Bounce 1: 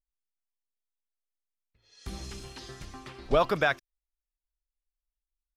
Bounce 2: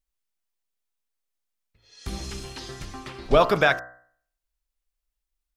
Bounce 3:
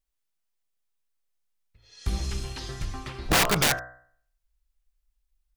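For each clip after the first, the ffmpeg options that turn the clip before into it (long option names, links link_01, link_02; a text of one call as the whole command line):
ffmpeg -i in.wav -af "bandreject=frequency=62.37:width_type=h:width=4,bandreject=frequency=124.74:width_type=h:width=4,bandreject=frequency=187.11:width_type=h:width=4,bandreject=frequency=249.48:width_type=h:width=4,bandreject=frequency=311.85:width_type=h:width=4,bandreject=frequency=374.22:width_type=h:width=4,bandreject=frequency=436.59:width_type=h:width=4,bandreject=frequency=498.96:width_type=h:width=4,bandreject=frequency=561.33:width_type=h:width=4,bandreject=frequency=623.7:width_type=h:width=4,bandreject=frequency=686.07:width_type=h:width=4,bandreject=frequency=748.44:width_type=h:width=4,bandreject=frequency=810.81:width_type=h:width=4,bandreject=frequency=873.18:width_type=h:width=4,bandreject=frequency=935.55:width_type=h:width=4,bandreject=frequency=997.92:width_type=h:width=4,bandreject=frequency=1060.29:width_type=h:width=4,bandreject=frequency=1122.66:width_type=h:width=4,bandreject=frequency=1185.03:width_type=h:width=4,bandreject=frequency=1247.4:width_type=h:width=4,bandreject=frequency=1309.77:width_type=h:width=4,bandreject=frequency=1372.14:width_type=h:width=4,bandreject=frequency=1434.51:width_type=h:width=4,bandreject=frequency=1496.88:width_type=h:width=4,bandreject=frequency=1559.25:width_type=h:width=4,bandreject=frequency=1621.62:width_type=h:width=4,bandreject=frequency=1683.99:width_type=h:width=4,bandreject=frequency=1746.36:width_type=h:width=4,bandreject=frequency=1808.73:width_type=h:width=4,bandreject=frequency=1871.1:width_type=h:width=4,bandreject=frequency=1933.47:width_type=h:width=4,bandreject=frequency=1995.84:width_type=h:width=4,volume=6.5dB" out.wav
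ffmpeg -i in.wav -af "asubboost=boost=3:cutoff=150,aeval=exprs='(mod(5.62*val(0)+1,2)-1)/5.62':channel_layout=same" out.wav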